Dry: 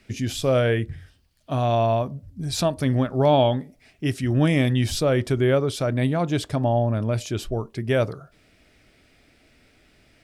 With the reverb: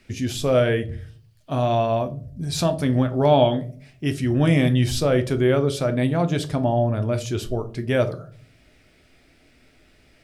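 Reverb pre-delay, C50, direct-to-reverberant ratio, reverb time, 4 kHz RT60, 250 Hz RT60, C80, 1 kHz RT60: 8 ms, 16.5 dB, 8.0 dB, 0.45 s, 0.25 s, 0.65 s, 22.0 dB, 0.35 s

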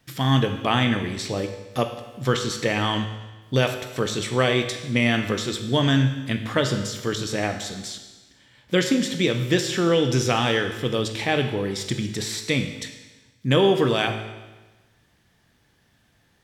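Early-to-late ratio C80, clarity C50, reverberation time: 10.0 dB, 8.0 dB, 1.2 s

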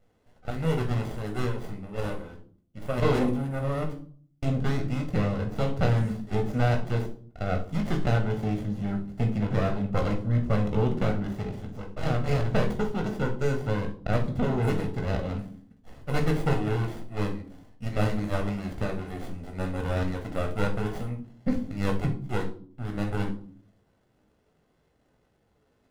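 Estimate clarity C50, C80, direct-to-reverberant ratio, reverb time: 10.5 dB, 16.0 dB, 3.0 dB, 0.50 s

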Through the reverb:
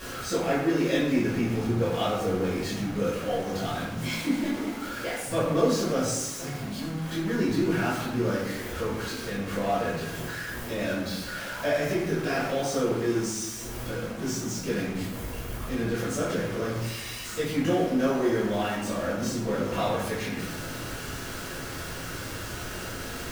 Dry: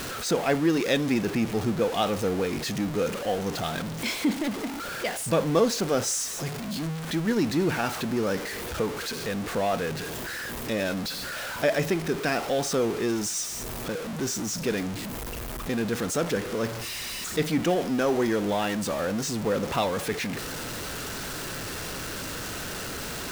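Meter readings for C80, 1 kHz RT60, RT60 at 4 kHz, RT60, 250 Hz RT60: 5.0 dB, 0.90 s, 0.55 s, 0.95 s, 1.5 s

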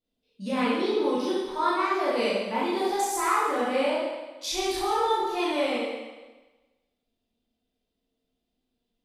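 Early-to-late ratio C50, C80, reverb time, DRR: -2.5 dB, 1.5 dB, 1.2 s, -9.0 dB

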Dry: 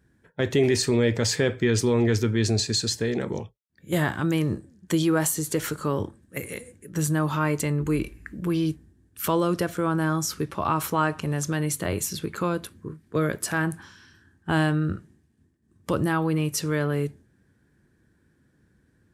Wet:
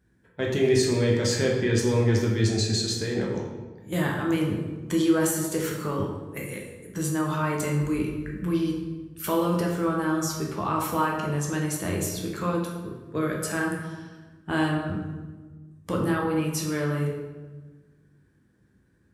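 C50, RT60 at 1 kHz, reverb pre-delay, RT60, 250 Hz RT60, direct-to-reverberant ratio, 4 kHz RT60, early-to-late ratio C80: 3.5 dB, 1.2 s, 7 ms, 1.3 s, 1.6 s, -1.5 dB, 0.85 s, 5.5 dB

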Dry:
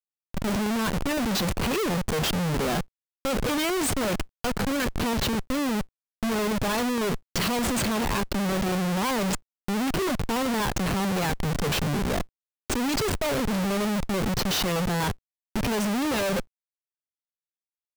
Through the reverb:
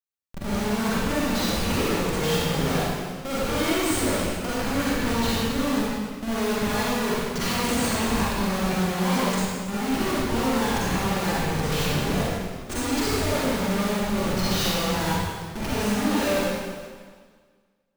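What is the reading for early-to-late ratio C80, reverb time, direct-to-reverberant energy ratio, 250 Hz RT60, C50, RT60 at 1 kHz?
-2.0 dB, 1.7 s, -8.5 dB, 1.7 s, -5.5 dB, 1.7 s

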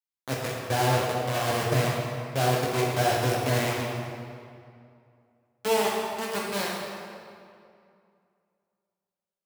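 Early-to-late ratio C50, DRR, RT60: -1.0 dB, -3.0 dB, 2.4 s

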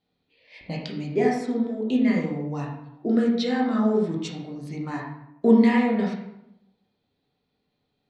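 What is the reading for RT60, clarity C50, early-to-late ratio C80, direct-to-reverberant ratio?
0.85 s, 3.0 dB, 6.5 dB, -3.0 dB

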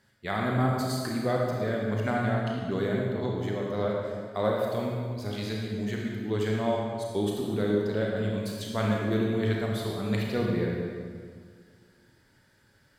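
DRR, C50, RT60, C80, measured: -2.0 dB, 0.0 dB, 1.9 s, 1.5 dB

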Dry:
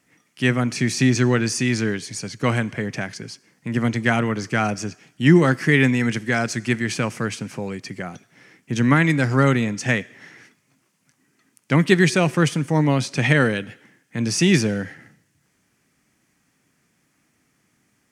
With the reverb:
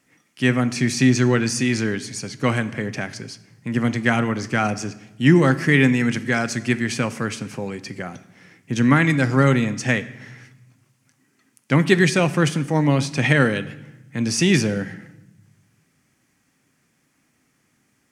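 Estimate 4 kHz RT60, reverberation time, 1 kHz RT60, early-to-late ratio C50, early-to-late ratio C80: 0.75 s, 1.0 s, 0.95 s, 17.0 dB, 19.0 dB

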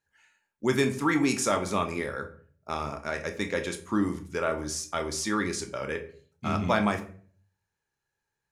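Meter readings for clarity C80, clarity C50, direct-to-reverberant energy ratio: 16.5 dB, 12.0 dB, 5.5 dB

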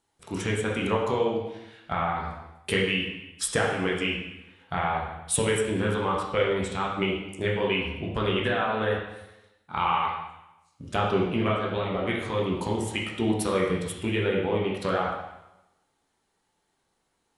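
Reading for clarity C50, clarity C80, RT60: 2.5 dB, 5.0 dB, 0.90 s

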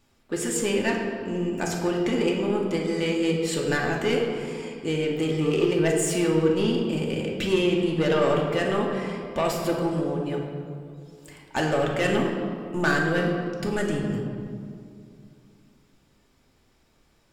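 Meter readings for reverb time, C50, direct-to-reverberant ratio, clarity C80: 2.4 s, 3.0 dB, -1.0 dB, 4.5 dB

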